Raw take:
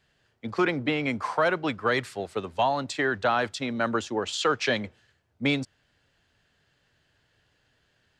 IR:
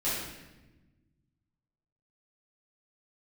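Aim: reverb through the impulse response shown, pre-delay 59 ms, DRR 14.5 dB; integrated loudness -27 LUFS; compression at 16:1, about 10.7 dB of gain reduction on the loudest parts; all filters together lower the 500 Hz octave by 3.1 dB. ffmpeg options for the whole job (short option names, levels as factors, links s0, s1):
-filter_complex "[0:a]equalizer=f=500:t=o:g=-4,acompressor=threshold=0.0282:ratio=16,asplit=2[s0][s1];[1:a]atrim=start_sample=2205,adelay=59[s2];[s1][s2]afir=irnorm=-1:irlink=0,volume=0.0708[s3];[s0][s3]amix=inputs=2:normalize=0,volume=2.82"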